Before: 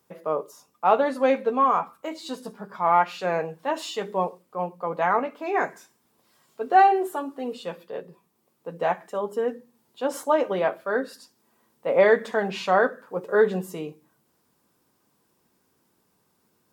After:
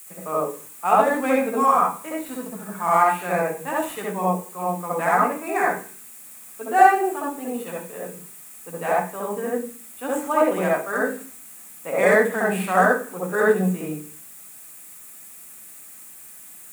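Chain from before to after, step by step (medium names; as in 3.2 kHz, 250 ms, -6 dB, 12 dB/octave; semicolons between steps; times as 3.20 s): median filter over 9 samples; added noise white -54 dBFS; resonant high shelf 6.3 kHz +10.5 dB, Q 1.5; reverberation RT60 0.40 s, pre-delay 64 ms, DRR -2 dB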